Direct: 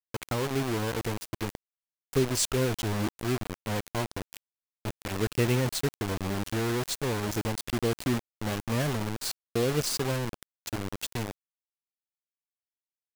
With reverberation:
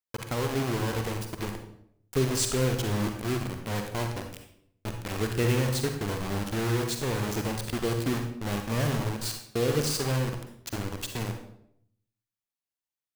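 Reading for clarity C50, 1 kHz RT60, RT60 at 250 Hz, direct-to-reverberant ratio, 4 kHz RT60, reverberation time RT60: 5.5 dB, 0.65 s, 0.80 s, 4.0 dB, 0.50 s, 0.70 s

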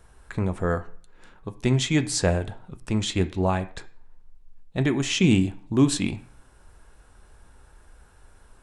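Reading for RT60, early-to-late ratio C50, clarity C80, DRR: 0.50 s, 16.0 dB, 20.0 dB, 9.0 dB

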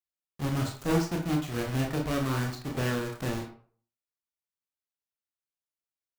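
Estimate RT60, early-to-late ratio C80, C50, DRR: 0.50 s, 11.0 dB, 7.0 dB, 0.0 dB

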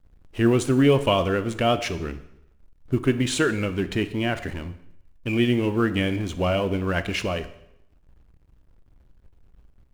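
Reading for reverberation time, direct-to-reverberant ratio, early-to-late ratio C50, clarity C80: 0.80 s, 11.0 dB, 14.0 dB, 16.5 dB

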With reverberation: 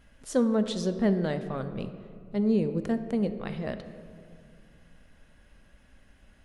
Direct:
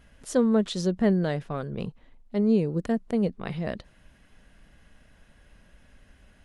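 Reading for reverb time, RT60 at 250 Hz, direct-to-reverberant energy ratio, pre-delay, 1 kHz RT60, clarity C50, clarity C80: 2.2 s, 2.6 s, 9.0 dB, 3 ms, 1.9 s, 10.5 dB, 11.5 dB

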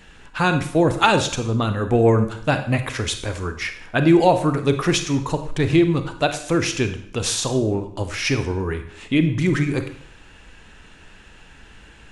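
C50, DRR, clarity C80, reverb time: 10.0 dB, 8.0 dB, 13.0 dB, 0.65 s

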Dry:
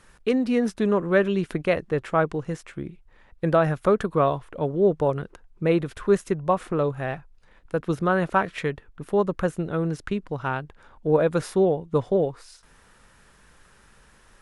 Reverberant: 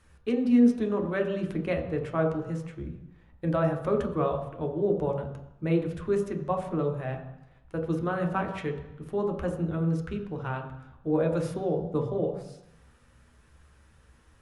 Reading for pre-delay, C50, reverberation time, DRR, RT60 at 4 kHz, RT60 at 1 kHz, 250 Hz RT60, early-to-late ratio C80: 3 ms, 8.0 dB, 0.90 s, 2.0 dB, 0.90 s, 0.90 s, 0.85 s, 10.5 dB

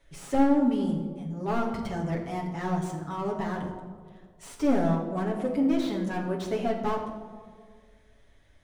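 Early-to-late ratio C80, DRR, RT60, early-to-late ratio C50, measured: 8.0 dB, −2.5 dB, 1.8 s, 6.0 dB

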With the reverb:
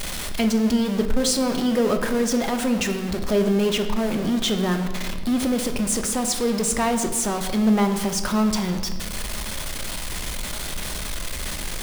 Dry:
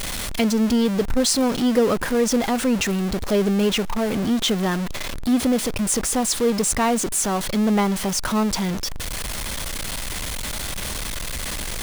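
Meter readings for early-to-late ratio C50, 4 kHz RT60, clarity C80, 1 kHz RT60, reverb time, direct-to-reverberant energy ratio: 8.5 dB, 0.90 s, 10.5 dB, 1.2 s, 1.3 s, 6.0 dB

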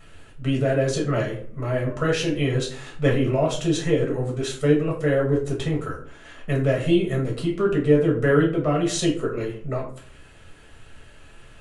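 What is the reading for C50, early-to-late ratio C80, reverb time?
8.0 dB, 12.5 dB, 0.50 s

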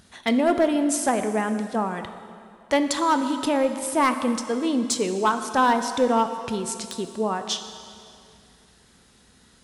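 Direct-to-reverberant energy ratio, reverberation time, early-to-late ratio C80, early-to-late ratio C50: 8.0 dB, 2.4 s, 10.0 dB, 9.0 dB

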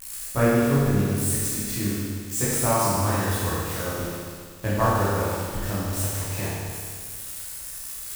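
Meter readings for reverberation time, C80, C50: 1.9 s, −1.0 dB, −3.0 dB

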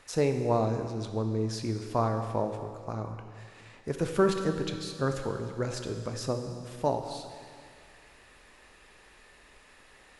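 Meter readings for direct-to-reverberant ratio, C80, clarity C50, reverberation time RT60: 5.5 dB, 8.0 dB, 7.0 dB, 2.2 s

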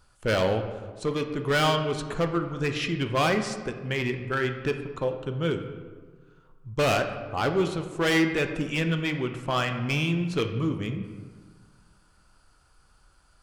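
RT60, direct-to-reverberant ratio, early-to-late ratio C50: 1.6 s, 6.0 dB, 8.5 dB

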